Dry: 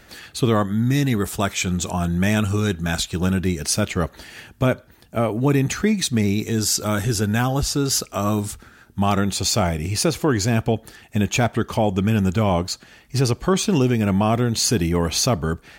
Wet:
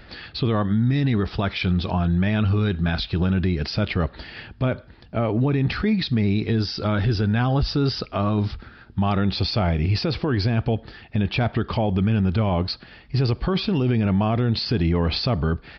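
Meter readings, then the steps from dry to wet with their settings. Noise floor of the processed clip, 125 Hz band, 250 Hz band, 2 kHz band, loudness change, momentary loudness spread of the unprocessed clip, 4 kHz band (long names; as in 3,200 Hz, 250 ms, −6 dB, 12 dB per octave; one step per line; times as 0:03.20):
−47 dBFS, +0.5 dB, −1.5 dB, −3.0 dB, −1.5 dB, 6 LU, −2.5 dB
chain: low-shelf EQ 130 Hz +7 dB
brickwall limiter −15 dBFS, peak gain reduction 8.5 dB
downsampling to 11,025 Hz
level +1.5 dB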